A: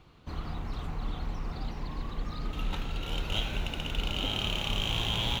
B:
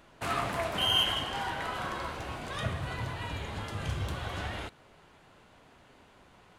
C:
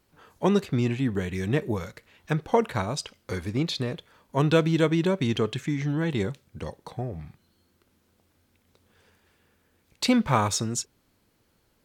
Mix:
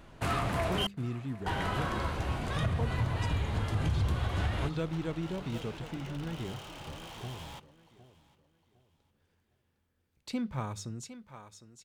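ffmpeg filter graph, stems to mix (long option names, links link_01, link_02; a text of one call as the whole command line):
ffmpeg -i stem1.wav -i stem2.wav -i stem3.wav -filter_complex "[0:a]equalizer=frequency=850:width=0.45:gain=14,asoftclip=type=hard:threshold=-32.5dB,adelay=2200,volume=-13dB,asplit=2[link_01][link_02];[link_02]volume=-21.5dB[link_03];[1:a]asoftclip=type=tanh:threshold=-23dB,volume=0.5dB,asplit=3[link_04][link_05][link_06];[link_04]atrim=end=0.87,asetpts=PTS-STARTPTS,afade=type=out:start_time=0.866:duration=0.004:curve=hsin[link_07];[link_05]atrim=start=0.87:end=1.46,asetpts=PTS-STARTPTS,volume=0[link_08];[link_06]atrim=start=1.46,asetpts=PTS-STARTPTS,afade=type=in:duration=0.004:curve=hsin[link_09];[link_07][link_08][link_09]concat=n=3:v=0:a=1,asplit=2[link_10][link_11];[link_11]volume=-20.5dB[link_12];[2:a]bandreject=frequency=50:width_type=h:width=6,bandreject=frequency=100:width_type=h:width=6,bandreject=frequency=150:width_type=h:width=6,bandreject=frequency=200:width_type=h:width=6,adelay=250,volume=-17dB,asplit=2[link_13][link_14];[link_14]volume=-10dB[link_15];[link_10][link_13]amix=inputs=2:normalize=0,lowshelf=frequency=220:gain=11,alimiter=limit=-21.5dB:level=0:latency=1:release=167,volume=0dB[link_16];[link_03][link_12][link_15]amix=inputs=3:normalize=0,aecho=0:1:757|1514|2271|3028:1|0.29|0.0841|0.0244[link_17];[link_01][link_16][link_17]amix=inputs=3:normalize=0" out.wav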